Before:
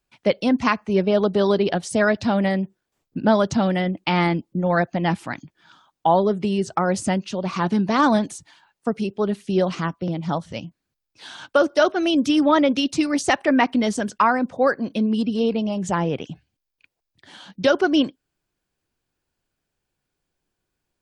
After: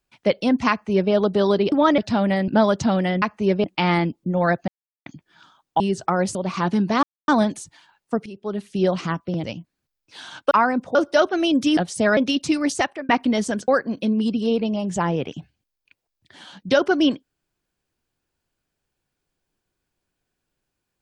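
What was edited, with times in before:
0.7–1.12 copy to 3.93
1.72–2.12 swap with 12.4–12.66
2.62–3.19 cut
4.97–5.35 mute
6.09–6.49 cut
7.04–7.34 cut
8.02 insert silence 0.25 s
9–9.55 fade in, from -15 dB
10.18–10.51 cut
13.21–13.58 fade out linear
14.17–14.61 move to 11.58

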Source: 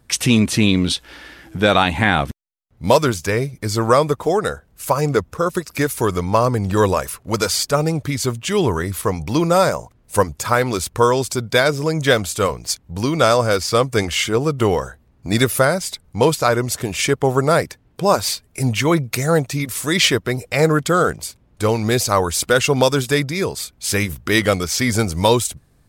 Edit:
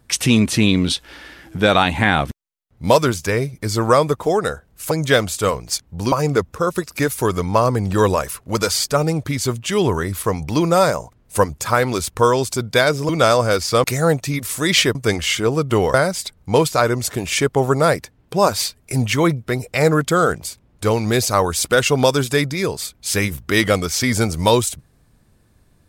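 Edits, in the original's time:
11.88–13.09 move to 4.91
14.83–15.61 cut
19.1–20.21 move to 13.84

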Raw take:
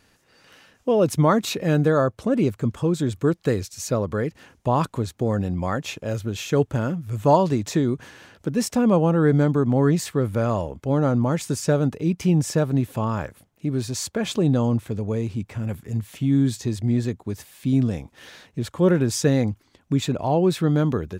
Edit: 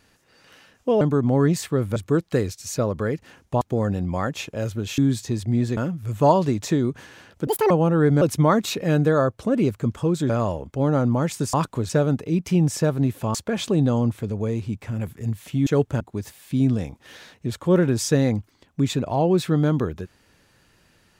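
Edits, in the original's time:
1.01–3.09 swap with 9.44–10.39
4.74–5.1 move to 11.63
6.47–6.81 swap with 16.34–17.13
8.51–8.93 speed 179%
13.08–14.02 cut

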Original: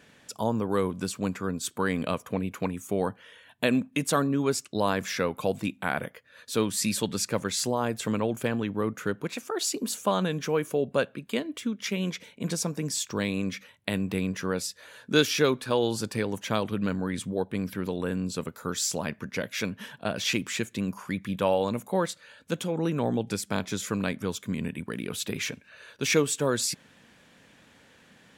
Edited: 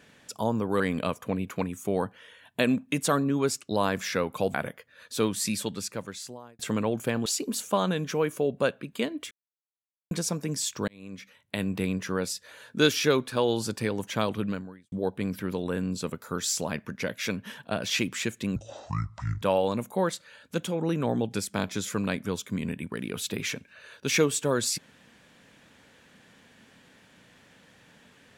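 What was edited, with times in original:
0.8–1.84 cut
5.58–5.91 cut
6.6–7.96 fade out
8.63–9.6 cut
11.65–12.45 mute
13.22–14.06 fade in
16.78–17.26 fade out quadratic
20.9–21.38 speed 56%

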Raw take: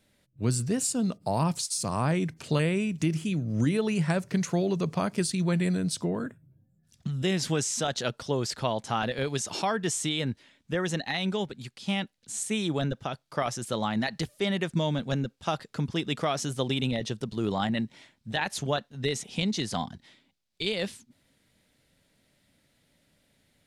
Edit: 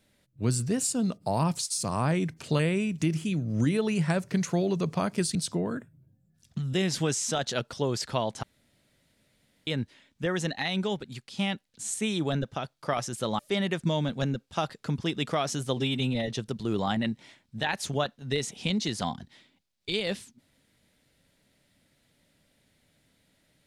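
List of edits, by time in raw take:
5.35–5.84 cut
8.92–10.16 room tone
13.88–14.29 cut
16.67–17.02 stretch 1.5×

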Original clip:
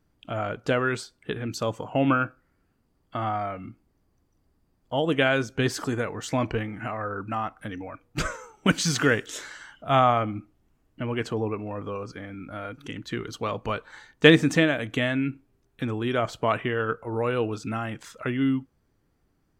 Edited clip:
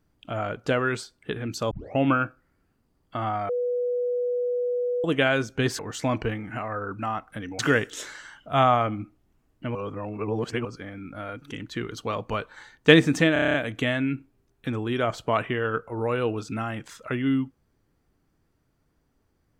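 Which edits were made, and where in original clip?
1.71 tape start 0.26 s
3.49–5.04 bleep 490 Hz -23 dBFS
5.79–6.08 cut
7.88–8.95 cut
11.11–12.01 reverse
14.69 stutter 0.03 s, 8 plays

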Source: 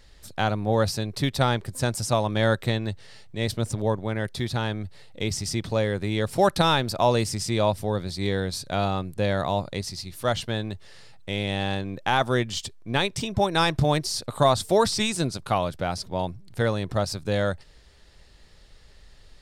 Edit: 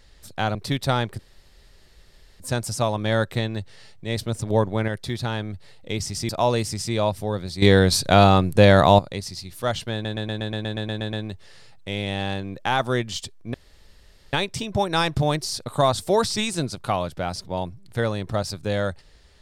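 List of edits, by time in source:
0.55–1.07 cut
1.71 insert room tone 1.21 s
3.81–4.19 gain +4.5 dB
5.6–6.9 cut
8.23–9.6 gain +11 dB
10.54 stutter 0.12 s, 11 plays
12.95 insert room tone 0.79 s

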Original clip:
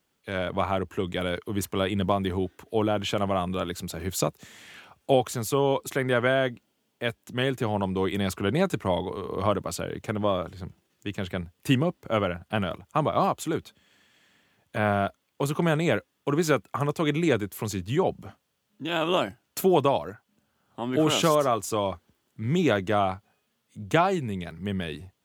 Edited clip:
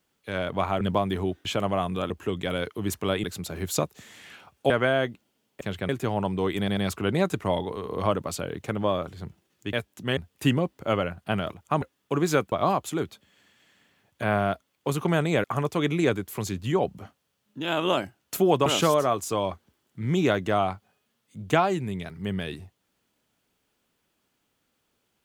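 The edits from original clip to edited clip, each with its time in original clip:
0.81–1.95 move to 3.68
2.59–3.03 cut
5.14–6.12 cut
7.03–7.47 swap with 11.13–11.41
8.17 stutter 0.09 s, 3 plays
15.98–16.68 move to 13.06
19.9–21.07 cut

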